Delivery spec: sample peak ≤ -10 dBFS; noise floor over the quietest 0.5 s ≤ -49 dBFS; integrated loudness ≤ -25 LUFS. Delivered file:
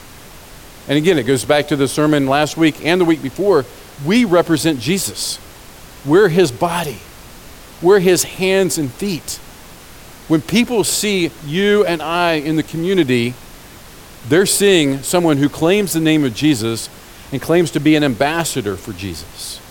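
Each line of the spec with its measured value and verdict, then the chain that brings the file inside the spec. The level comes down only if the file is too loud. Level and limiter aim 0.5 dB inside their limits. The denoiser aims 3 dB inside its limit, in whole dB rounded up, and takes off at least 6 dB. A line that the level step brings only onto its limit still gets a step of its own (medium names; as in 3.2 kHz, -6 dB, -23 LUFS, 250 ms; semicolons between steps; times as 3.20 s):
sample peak -2.0 dBFS: fail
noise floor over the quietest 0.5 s -38 dBFS: fail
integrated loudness -15.5 LUFS: fail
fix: noise reduction 6 dB, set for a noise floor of -38 dBFS; trim -10 dB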